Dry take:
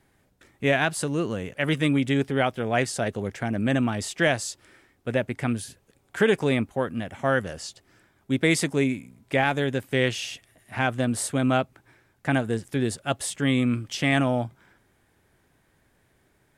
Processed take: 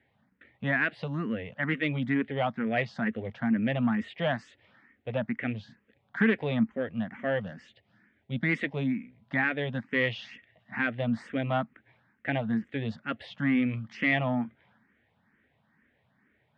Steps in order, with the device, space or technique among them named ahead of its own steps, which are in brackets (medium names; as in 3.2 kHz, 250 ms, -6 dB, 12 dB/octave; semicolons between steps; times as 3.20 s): 7.45–8.49 s: peaking EQ 1.1 kHz -7.5 dB 0.87 oct; barber-pole phaser into a guitar amplifier (barber-pole phaser +2.2 Hz; saturation -15.5 dBFS, distortion -20 dB; cabinet simulation 95–3400 Hz, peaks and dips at 220 Hz +9 dB, 370 Hz -8 dB, 1.9 kHz +7 dB); trim -2 dB